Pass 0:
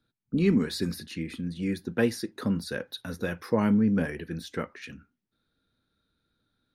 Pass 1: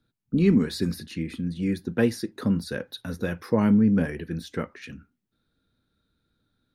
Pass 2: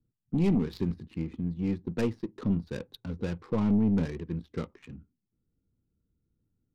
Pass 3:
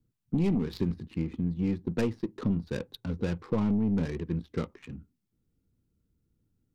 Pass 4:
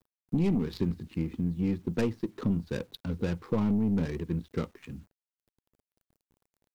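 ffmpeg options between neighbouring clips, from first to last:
-af "lowshelf=f=360:g=5"
-af "aeval=exprs='(tanh(6.31*val(0)+0.25)-tanh(0.25))/6.31':c=same,adynamicsmooth=sensitivity=5.5:basefreq=620,equalizer=f=250:t=o:w=0.67:g=-4,equalizer=f=630:t=o:w=0.67:g=-8,equalizer=f=1.6k:t=o:w=0.67:g=-9"
-af "acompressor=threshold=-26dB:ratio=6,volume=3dB"
-af "acrusher=bits=10:mix=0:aa=0.000001"

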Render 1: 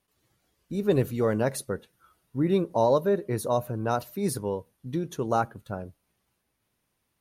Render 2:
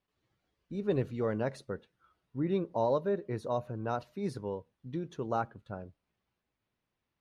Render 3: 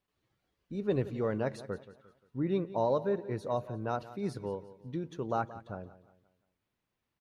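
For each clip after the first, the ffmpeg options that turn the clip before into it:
-af "lowpass=4.1k,volume=-7dB"
-af "aecho=1:1:176|352|528|704:0.158|0.0634|0.0254|0.0101"

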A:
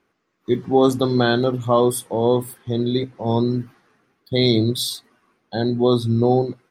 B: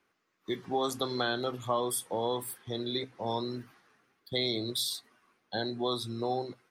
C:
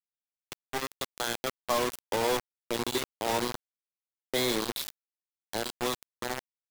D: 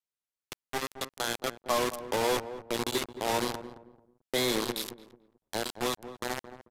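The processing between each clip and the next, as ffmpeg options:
-filter_complex "[0:a]acrossover=split=370|820[a][b][c];[a]acompressor=threshold=-30dB:ratio=4[d];[b]acompressor=threshold=-26dB:ratio=4[e];[c]acompressor=threshold=-27dB:ratio=4[f];[d][e][f]amix=inputs=3:normalize=0,tiltshelf=f=720:g=-4,volume=-6.5dB"
-filter_complex "[0:a]acrossover=split=200|2900[a][b][c];[b]dynaudnorm=f=460:g=7:m=9.5dB[d];[a][d][c]amix=inputs=3:normalize=0,acrusher=bits=3:mix=0:aa=0.000001,volume=-5.5dB"
-filter_complex "[0:a]asplit=2[a][b];[b]adelay=220,lowpass=f=830:p=1,volume=-10.5dB,asplit=2[c][d];[d]adelay=220,lowpass=f=830:p=1,volume=0.31,asplit=2[e][f];[f]adelay=220,lowpass=f=830:p=1,volume=0.31[g];[a][c][e][g]amix=inputs=4:normalize=0,aresample=32000,aresample=44100"

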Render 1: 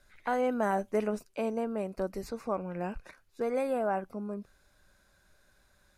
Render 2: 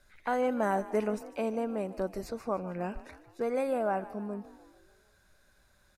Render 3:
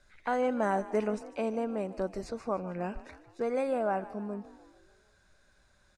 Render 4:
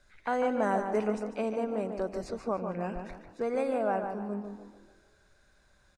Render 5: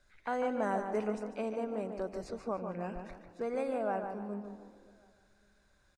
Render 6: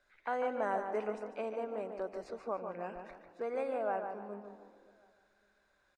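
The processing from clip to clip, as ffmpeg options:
-filter_complex "[0:a]asplit=6[a][b][c][d][e][f];[b]adelay=149,afreqshift=44,volume=-17dB[g];[c]adelay=298,afreqshift=88,volume=-22dB[h];[d]adelay=447,afreqshift=132,volume=-27.1dB[i];[e]adelay=596,afreqshift=176,volume=-32.1dB[j];[f]adelay=745,afreqshift=220,volume=-37.1dB[k];[a][g][h][i][j][k]amix=inputs=6:normalize=0"
-af "lowpass=f=8.9k:w=0.5412,lowpass=f=8.9k:w=1.3066"
-filter_complex "[0:a]asplit=2[a][b];[b]adelay=146,lowpass=f=2.3k:p=1,volume=-6dB,asplit=2[c][d];[d]adelay=146,lowpass=f=2.3k:p=1,volume=0.36,asplit=2[e][f];[f]adelay=146,lowpass=f=2.3k:p=1,volume=0.36,asplit=2[g][h];[h]adelay=146,lowpass=f=2.3k:p=1,volume=0.36[i];[a][c][e][g][i]amix=inputs=5:normalize=0"
-filter_complex "[0:a]asplit=2[a][b];[b]adelay=563,lowpass=f=2k:p=1,volume=-23dB,asplit=2[c][d];[d]adelay=563,lowpass=f=2k:p=1,volume=0.32[e];[a][c][e]amix=inputs=3:normalize=0,volume=-4.5dB"
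-af "bass=f=250:g=-14,treble=f=4k:g=-9"

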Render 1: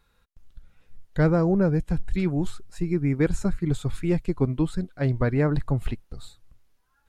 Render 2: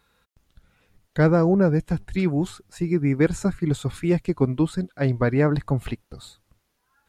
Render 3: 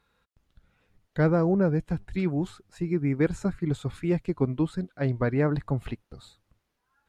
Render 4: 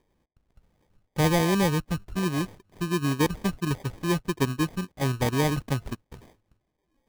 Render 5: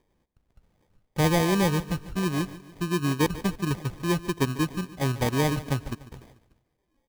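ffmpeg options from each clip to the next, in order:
-af "highpass=f=130:p=1,volume=4dB"
-af "highshelf=f=5.5k:g=-8.5,volume=-4.5dB"
-af "acrusher=samples=32:mix=1:aa=0.000001"
-af "aecho=1:1:146|292|438|584:0.15|0.0718|0.0345|0.0165"

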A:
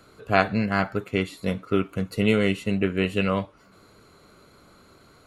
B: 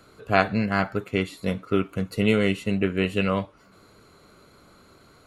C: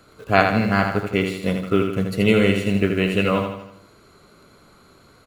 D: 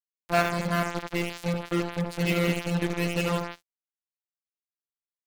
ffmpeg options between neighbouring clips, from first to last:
-af anull
-filter_complex "[0:a]asplit=2[a][b];[b]acrusher=bits=6:mix=0:aa=0.000001,volume=-9.5dB[c];[a][c]amix=inputs=2:normalize=0,aecho=1:1:80|160|240|320|400|480:0.501|0.251|0.125|0.0626|0.0313|0.0157,volume=1dB"
-af "afftfilt=real='hypot(re,im)*cos(PI*b)':imag='0':win_size=1024:overlap=0.75,acrusher=bits=3:mix=0:aa=0.5,volume=-4.5dB"

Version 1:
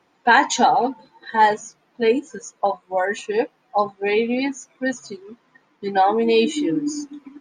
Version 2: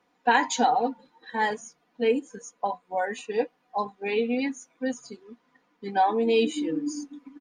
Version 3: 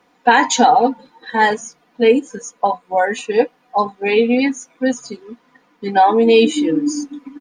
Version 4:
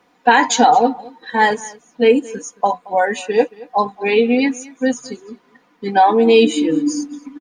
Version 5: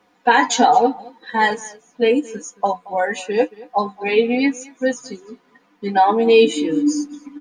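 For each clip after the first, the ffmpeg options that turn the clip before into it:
-af "aecho=1:1:4.1:0.45,volume=-7.5dB"
-af "alimiter=level_in=12.5dB:limit=-1dB:release=50:level=0:latency=1,volume=-1dB"
-af "aecho=1:1:224:0.0841"
-af "flanger=delay=9.3:depth=2.2:regen=41:speed=0.84:shape=triangular,volume=2dB"

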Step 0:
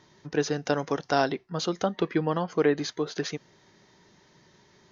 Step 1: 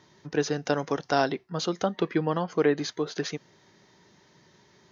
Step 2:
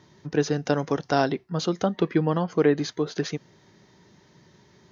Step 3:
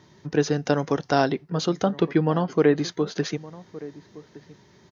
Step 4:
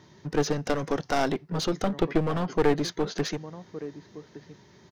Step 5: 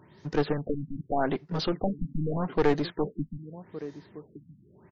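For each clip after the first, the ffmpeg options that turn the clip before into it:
-af "highpass=58"
-af "lowshelf=f=310:g=7.5"
-filter_complex "[0:a]asplit=2[a][b];[b]adelay=1166,volume=-18dB,highshelf=f=4k:g=-26.2[c];[a][c]amix=inputs=2:normalize=0,volume=1.5dB"
-af "aeval=exprs='clip(val(0),-1,0.0422)':c=same"
-af "afftfilt=real='re*lt(b*sr/1024,260*pow(7700/260,0.5+0.5*sin(2*PI*0.83*pts/sr)))':imag='im*lt(b*sr/1024,260*pow(7700/260,0.5+0.5*sin(2*PI*0.83*pts/sr)))':win_size=1024:overlap=0.75,volume=-1dB"

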